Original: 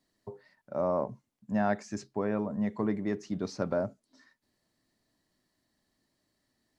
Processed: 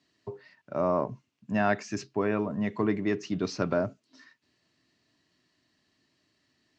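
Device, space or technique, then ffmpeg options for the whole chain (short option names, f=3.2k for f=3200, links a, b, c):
car door speaker: -af "highpass=94,equalizer=f=210:t=q:w=4:g=-6,equalizer=f=530:t=q:w=4:g=-7,equalizer=f=820:t=q:w=4:g=-6,equalizer=f=2.7k:t=q:w=4:g=8,lowpass=f=6.7k:w=0.5412,lowpass=f=6.7k:w=1.3066,volume=6.5dB"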